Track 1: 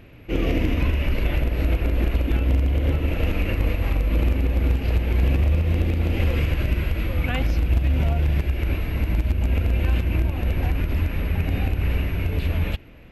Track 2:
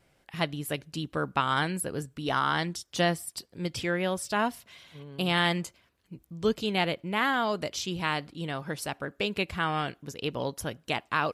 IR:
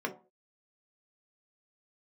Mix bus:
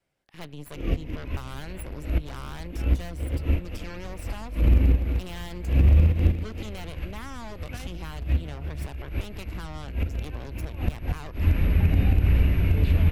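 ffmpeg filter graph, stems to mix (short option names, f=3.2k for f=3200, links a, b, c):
-filter_complex "[0:a]adelay=450,volume=3dB[a];[1:a]asoftclip=type=tanh:threshold=-13.5dB,adynamicequalizer=threshold=0.00316:dfrequency=140:dqfactor=3.9:tfrequency=140:tqfactor=3.9:attack=5:release=100:ratio=0.375:range=3:mode=boostabove:tftype=bell,aeval=exprs='0.178*(cos(1*acos(clip(val(0)/0.178,-1,1)))-cos(1*PI/2))+0.0447*(cos(8*acos(clip(val(0)/0.178,-1,1)))-cos(8*PI/2))':c=same,volume=-12.5dB,asplit=2[b][c];[c]apad=whole_len=598378[d];[a][d]sidechaincompress=threshold=-55dB:ratio=8:attack=5.7:release=115[e];[e][b]amix=inputs=2:normalize=0,acrossover=split=290[f][g];[g]acompressor=threshold=-38dB:ratio=2.5[h];[f][h]amix=inputs=2:normalize=0"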